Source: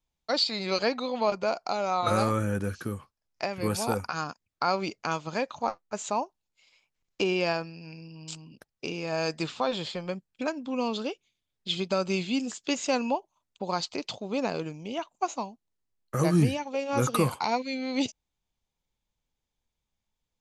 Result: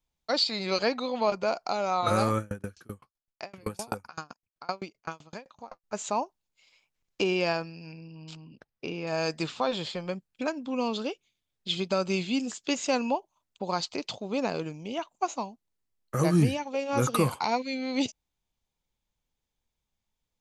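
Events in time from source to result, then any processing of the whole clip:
2.38–5.84 s: sawtooth tremolo in dB decaying 7.8 Hz, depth 32 dB
7.92–9.07 s: distance through air 170 m

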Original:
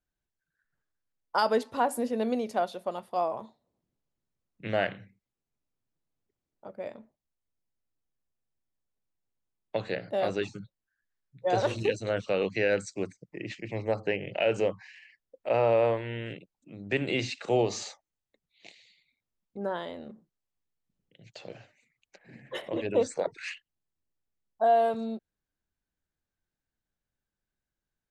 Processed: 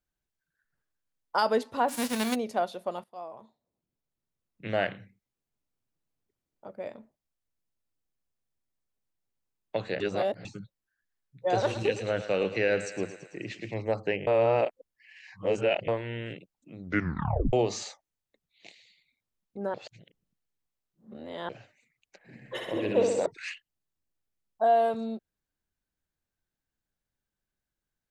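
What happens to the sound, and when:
1.88–2.34 s: formants flattened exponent 0.3
3.04–4.84 s: fade in, from -16.5 dB
10.00–10.45 s: reverse
11.55–13.74 s: thinning echo 111 ms, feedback 65%, level -11 dB
14.27–15.88 s: reverse
16.80 s: tape stop 0.73 s
19.74–21.49 s: reverse
22.35–23.26 s: flutter echo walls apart 11.1 m, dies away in 1.1 s

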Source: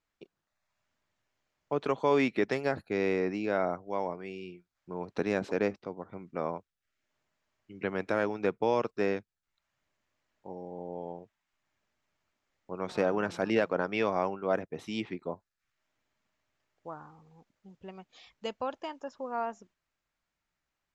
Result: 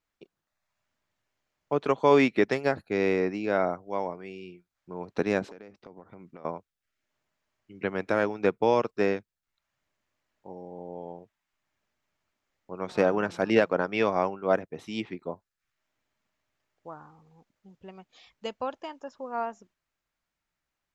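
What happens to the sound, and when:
5.45–6.45 s: compression 16:1, threshold -41 dBFS
whole clip: upward expansion 1.5:1, over -36 dBFS; trim +6.5 dB

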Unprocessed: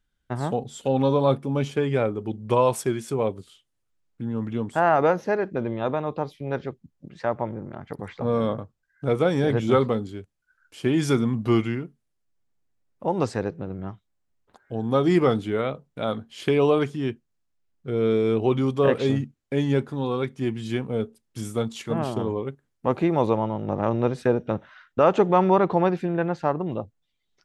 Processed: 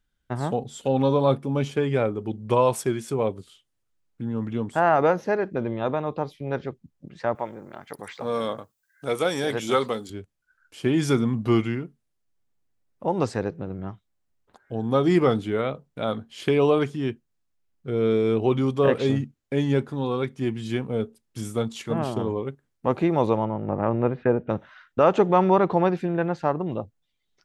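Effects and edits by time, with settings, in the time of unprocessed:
7.35–10.10 s: RIAA curve recording
23.45–24.50 s: low-pass 2.5 kHz 24 dB/octave

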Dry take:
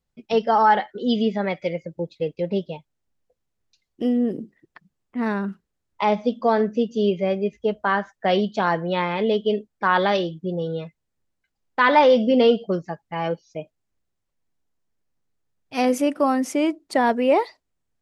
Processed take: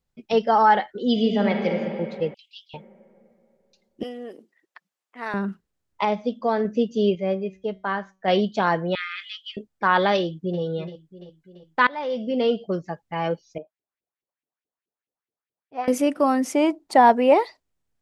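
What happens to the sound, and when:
1.10–1.72 s: reverb throw, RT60 2.8 s, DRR 2.5 dB
2.34–2.74 s: steep high-pass 2.8 kHz 72 dB/octave
4.03–5.34 s: high-pass 740 Hz
6.05–6.65 s: gain -3.5 dB
7.15–8.28 s: feedback comb 190 Hz, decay 0.36 s, mix 50%
8.95–9.57 s: Chebyshev high-pass 1.2 kHz, order 10
10.19–10.61 s: echo throw 340 ms, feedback 60%, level -13 dB
11.87–13.01 s: fade in, from -24 dB
13.58–15.88 s: LFO band-pass saw up 4.7 Hz 320–3000 Hz
16.55–17.34 s: peaking EQ 840 Hz +10 dB 0.63 oct

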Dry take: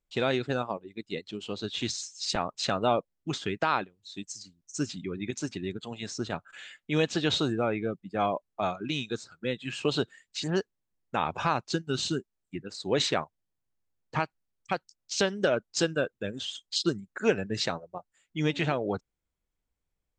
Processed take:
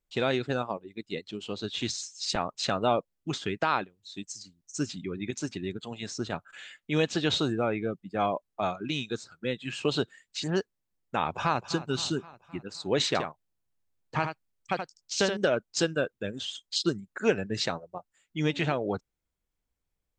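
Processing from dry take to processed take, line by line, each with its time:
11.23–11.66 s: echo throw 260 ms, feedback 60%, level -14.5 dB
13.07–15.37 s: delay 77 ms -7 dB

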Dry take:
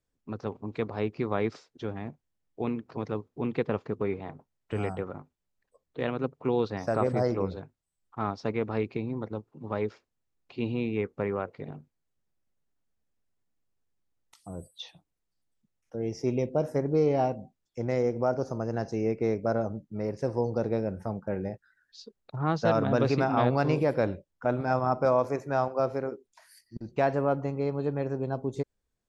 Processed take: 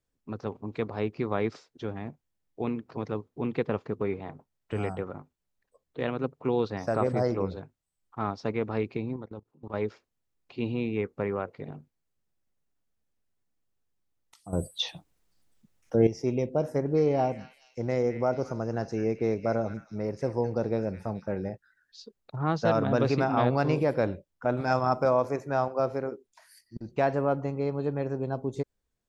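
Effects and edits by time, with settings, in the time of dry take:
9.16–9.74 s: level held to a coarse grid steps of 20 dB
14.53–16.07 s: gain +11.5 dB
16.64–21.50 s: repeats whose band climbs or falls 214 ms, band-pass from 2.1 kHz, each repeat 0.7 oct, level -6 dB
24.57–25.04 s: treble shelf 2.3 kHz +10 dB

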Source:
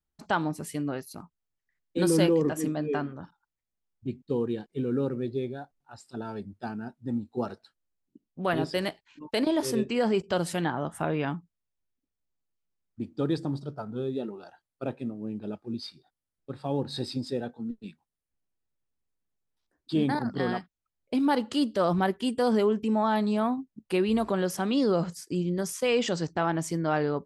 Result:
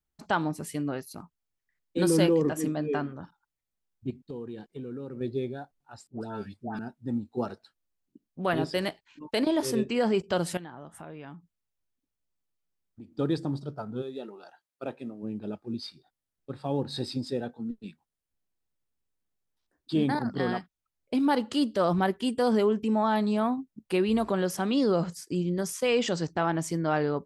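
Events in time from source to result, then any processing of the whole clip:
4.10–5.21 s: compression 4:1, threshold -36 dBFS
6.07–6.79 s: phase dispersion highs, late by 143 ms, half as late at 1.2 kHz
10.57–13.19 s: compression 2.5:1, threshold -47 dBFS
14.01–15.22 s: high-pass 710 Hz -> 290 Hz 6 dB/octave

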